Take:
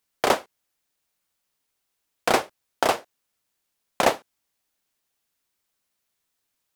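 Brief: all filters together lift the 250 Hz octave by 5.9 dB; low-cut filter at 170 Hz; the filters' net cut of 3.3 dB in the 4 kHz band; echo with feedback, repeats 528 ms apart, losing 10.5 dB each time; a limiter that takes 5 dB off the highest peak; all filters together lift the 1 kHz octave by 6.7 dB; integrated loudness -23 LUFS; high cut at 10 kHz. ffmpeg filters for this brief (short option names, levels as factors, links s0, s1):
-af "highpass=170,lowpass=10000,equalizer=f=250:t=o:g=8,equalizer=f=1000:t=o:g=8.5,equalizer=f=4000:t=o:g=-5,alimiter=limit=0.631:level=0:latency=1,aecho=1:1:528|1056|1584:0.299|0.0896|0.0269,volume=1.19"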